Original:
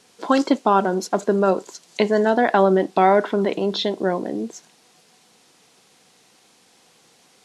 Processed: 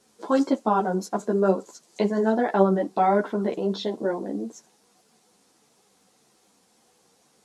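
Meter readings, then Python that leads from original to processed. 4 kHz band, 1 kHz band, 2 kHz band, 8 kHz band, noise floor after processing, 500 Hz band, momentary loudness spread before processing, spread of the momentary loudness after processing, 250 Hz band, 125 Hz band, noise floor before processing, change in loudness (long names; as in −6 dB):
−10.5 dB, −5.0 dB, −8.5 dB, can't be measured, −64 dBFS, −4.5 dB, 10 LU, 7 LU, −3.0 dB, −2.0 dB, −57 dBFS, −4.5 dB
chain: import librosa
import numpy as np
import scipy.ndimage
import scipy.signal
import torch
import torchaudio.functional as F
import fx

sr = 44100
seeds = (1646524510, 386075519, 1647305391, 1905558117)

y = fx.peak_eq(x, sr, hz=2800.0, db=-8.0, octaves=1.8)
y = fx.ensemble(y, sr)
y = F.gain(torch.from_numpy(y), -1.0).numpy()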